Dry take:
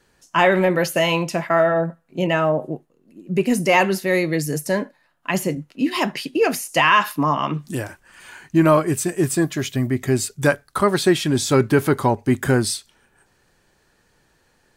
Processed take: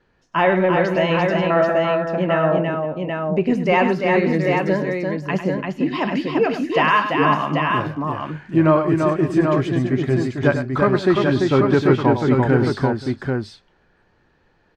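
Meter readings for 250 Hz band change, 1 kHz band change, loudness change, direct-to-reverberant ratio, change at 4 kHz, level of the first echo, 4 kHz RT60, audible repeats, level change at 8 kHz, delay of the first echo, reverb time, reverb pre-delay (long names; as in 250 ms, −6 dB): +2.5 dB, +1.5 dB, +1.0 dB, no reverb audible, −4.0 dB, −9.5 dB, no reverb audible, 4, below −15 dB, 100 ms, no reverb audible, no reverb audible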